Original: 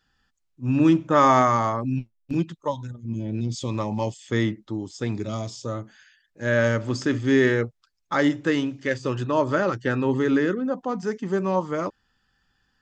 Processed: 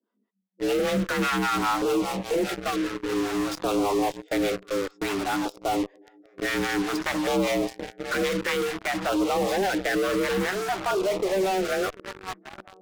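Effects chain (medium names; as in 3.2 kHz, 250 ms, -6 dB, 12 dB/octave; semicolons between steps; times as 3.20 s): one-sided wavefolder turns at -20.5 dBFS; band-stop 820 Hz, Q 16; on a send: shuffle delay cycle 1216 ms, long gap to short 1.5:1, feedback 39%, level -20 dB; on the sum: level-controlled noise filter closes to 1.2 kHz, open at -15.5 dBFS; frequency shift +190 Hz; harmonic tremolo 5 Hz, depth 100%, crossover 510 Hz; dynamic bell 190 Hz, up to -4 dB, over -42 dBFS, Q 1.5; in parallel at -11 dB: fuzz box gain 50 dB, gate -44 dBFS; on the sum: LFO notch saw down 0.55 Hz 400–2000 Hz; peak limiter -18 dBFS, peak gain reduction 8.5 dB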